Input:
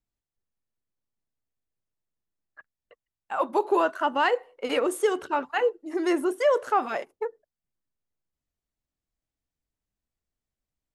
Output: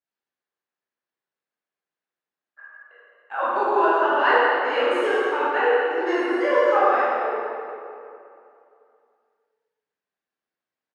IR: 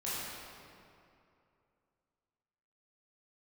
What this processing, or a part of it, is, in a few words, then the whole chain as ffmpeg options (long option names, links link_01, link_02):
station announcement: -filter_complex "[0:a]highpass=380,lowpass=4100,equalizer=frequency=1600:width_type=o:width=0.42:gain=6.5,aecho=1:1:116.6|174.9:0.251|0.251[link_01];[1:a]atrim=start_sample=2205[link_02];[link_01][link_02]afir=irnorm=-1:irlink=0"